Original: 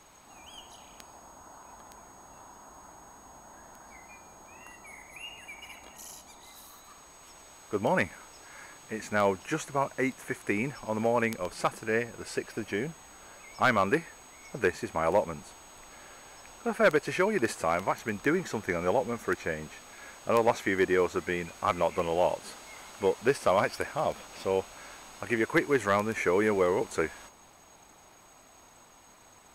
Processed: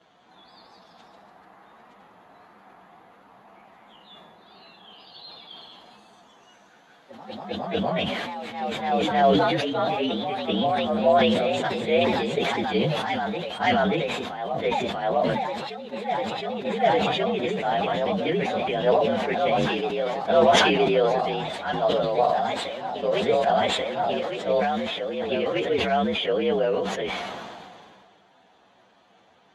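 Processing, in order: frequency axis rescaled in octaves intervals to 116%; cabinet simulation 130–5900 Hz, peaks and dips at 190 Hz +7 dB, 480 Hz +5 dB, 700 Hz +9 dB, 1.2 kHz -4 dB, 3.4 kHz +5 dB, 5.3 kHz -9 dB; gain riding 2 s; ever faster or slower copies 198 ms, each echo +1 st, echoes 3, each echo -6 dB; decay stretcher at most 27 dB/s

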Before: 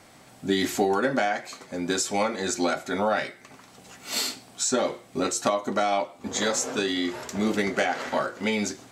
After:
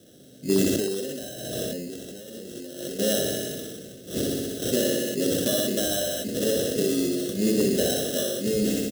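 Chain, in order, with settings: sample-and-hold 19×; Butterworth band-stop 970 Hz, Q 0.66; peaking EQ 2 kHz -11.5 dB 1.6 oct; comb 1.8 ms, depth 34%; flutter echo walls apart 10.6 m, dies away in 0.77 s; overload inside the chain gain 16.5 dB; feedback delay 84 ms, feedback 56%, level -13.5 dB; 0.76–2.99 s: compressor with a negative ratio -42 dBFS, ratio -1; high-pass 160 Hz 12 dB/octave; decay stretcher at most 25 dB/s; trim +4 dB

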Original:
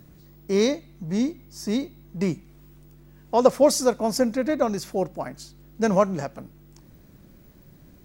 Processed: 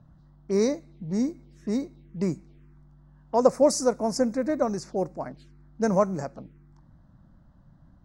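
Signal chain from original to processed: touch-sensitive phaser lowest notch 330 Hz, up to 3.2 kHz, full sweep at -26.5 dBFS; level-controlled noise filter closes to 2.2 kHz, open at -20 dBFS; trim -2 dB

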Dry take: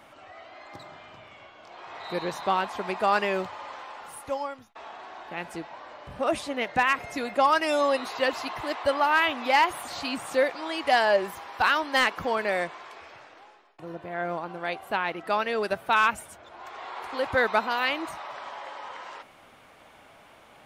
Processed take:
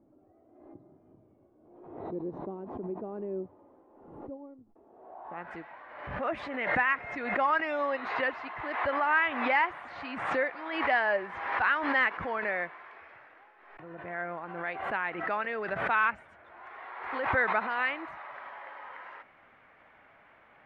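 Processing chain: low-pass sweep 330 Hz -> 1.9 kHz, 4.87–5.54 s; swell ahead of each attack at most 52 dB/s; trim -8.5 dB

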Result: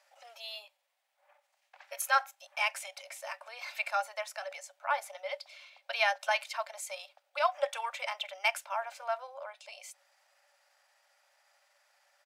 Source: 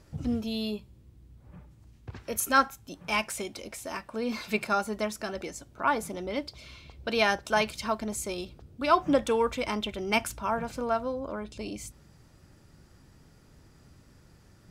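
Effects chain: rippled Chebyshev high-pass 550 Hz, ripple 6 dB; tempo 1.2×

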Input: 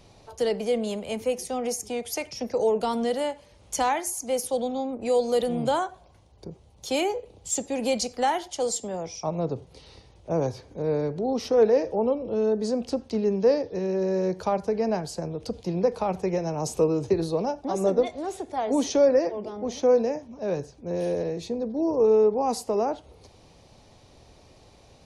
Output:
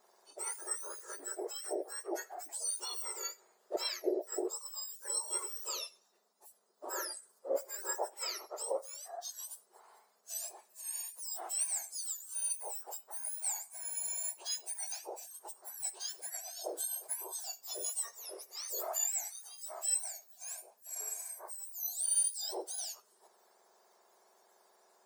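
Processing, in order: spectrum inverted on a logarithmic axis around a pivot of 2 kHz; 3.76–4.73 s: expander -29 dBFS; trim -8.5 dB

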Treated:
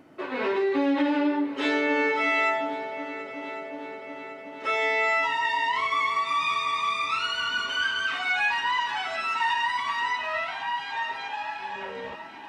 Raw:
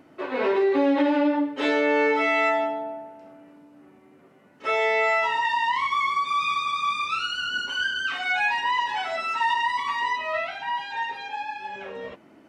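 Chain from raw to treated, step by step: multi-head delay 367 ms, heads second and third, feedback 62%, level -17 dB; dynamic bell 560 Hz, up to -6 dB, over -35 dBFS, Q 1

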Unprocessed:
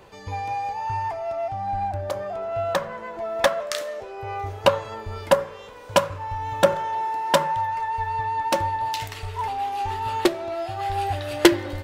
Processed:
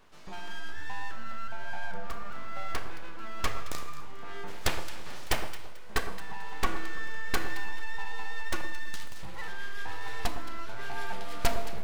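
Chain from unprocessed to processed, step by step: 4.47–5.48 s: spectral peaks clipped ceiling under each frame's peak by 22 dB; 8.61–9.19 s: Chebyshev high-pass 700 Hz, order 5; full-wave rectifier; echo whose repeats swap between lows and highs 110 ms, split 1.3 kHz, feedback 52%, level -9 dB; Schroeder reverb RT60 0.91 s, combs from 27 ms, DRR 11 dB; trim -8.5 dB

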